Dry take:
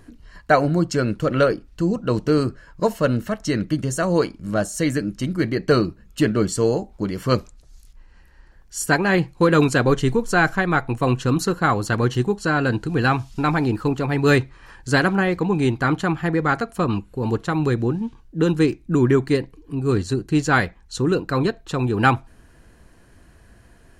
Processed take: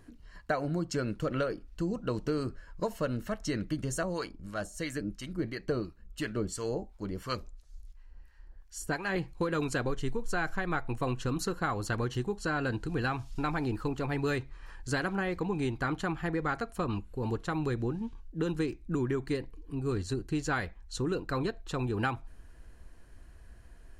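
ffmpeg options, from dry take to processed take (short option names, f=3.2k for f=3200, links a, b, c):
-filter_complex "[0:a]asettb=1/sr,asplit=3[a][b][c];[a]atrim=end=4.034[d];[b]atrim=start=4.03:end=9.16,asetpts=PTS-STARTPTS,afade=t=in:d=0.004:c=qsin,afade=t=out:st=5.126:d=0.004:c=qsin,acrossover=split=910[e][f];[e]aeval=exprs='val(0)*(1-0.7/2+0.7/2*cos(2*PI*2.9*n/s))':c=same[g];[f]aeval=exprs='val(0)*(1-0.7/2-0.7/2*cos(2*PI*2.9*n/s))':c=same[h];[g][h]amix=inputs=2:normalize=0[i];[c]atrim=start=9.156[j];[d][i]acrossfade=d=0.004:c1=hsin:c2=qsin[k];[k][j]acrossfade=d=0.004:c1=qsin:c2=hsin,asubboost=boost=3.5:cutoff=68,acompressor=threshold=-19dB:ratio=6,volume=-8dB"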